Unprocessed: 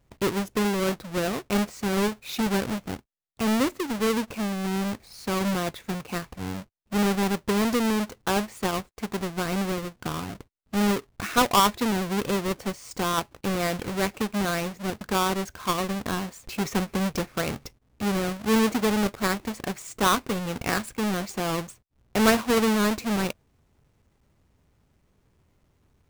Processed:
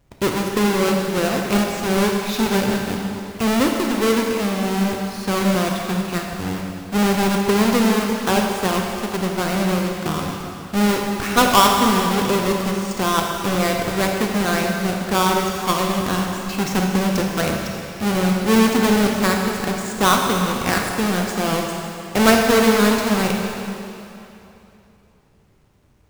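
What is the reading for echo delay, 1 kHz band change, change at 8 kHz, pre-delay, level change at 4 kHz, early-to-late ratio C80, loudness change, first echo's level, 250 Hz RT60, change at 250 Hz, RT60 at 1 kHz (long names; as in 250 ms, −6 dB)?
no echo audible, +7.5 dB, +7.5 dB, 28 ms, +7.5 dB, 3.0 dB, +7.0 dB, no echo audible, 2.8 s, +7.0 dB, 2.9 s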